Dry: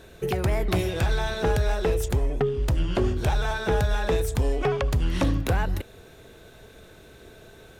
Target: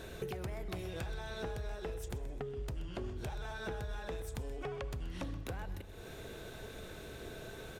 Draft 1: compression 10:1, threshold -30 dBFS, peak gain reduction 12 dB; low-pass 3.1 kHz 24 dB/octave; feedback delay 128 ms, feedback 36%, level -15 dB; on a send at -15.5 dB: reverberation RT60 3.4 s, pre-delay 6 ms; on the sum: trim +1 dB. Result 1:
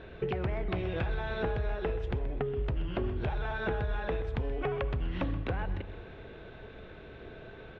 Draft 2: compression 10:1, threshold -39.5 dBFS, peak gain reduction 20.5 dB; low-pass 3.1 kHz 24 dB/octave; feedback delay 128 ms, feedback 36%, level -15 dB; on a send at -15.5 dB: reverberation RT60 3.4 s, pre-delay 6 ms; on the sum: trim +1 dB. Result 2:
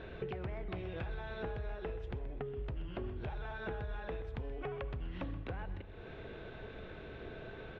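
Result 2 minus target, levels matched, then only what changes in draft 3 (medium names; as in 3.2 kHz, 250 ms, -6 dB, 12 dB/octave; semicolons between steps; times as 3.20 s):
4 kHz band -5.5 dB
remove: low-pass 3.1 kHz 24 dB/octave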